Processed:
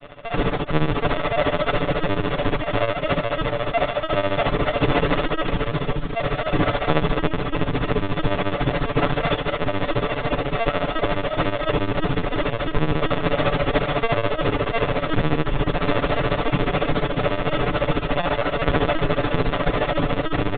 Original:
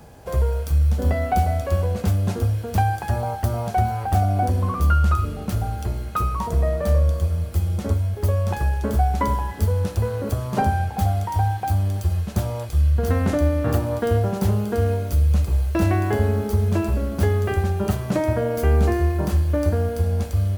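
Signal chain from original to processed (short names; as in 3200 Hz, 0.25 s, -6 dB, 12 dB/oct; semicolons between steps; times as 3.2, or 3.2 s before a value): sample sorter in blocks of 64 samples; on a send: frequency-shifting echo 0.268 s, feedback 53%, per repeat -63 Hz, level -5.5 dB; on the sum: one-sided clip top -29.5 dBFS, bottom -8.5 dBFS; LPC vocoder at 8 kHz pitch kept; comb 6.9 ms, depth 86%; grains 95 ms, grains 14/s, spray 11 ms, pitch spread up and down by 0 st; in parallel at -1 dB: limiter -17 dBFS, peak gain reduction 15.5 dB; on the sum: gain -1.5 dB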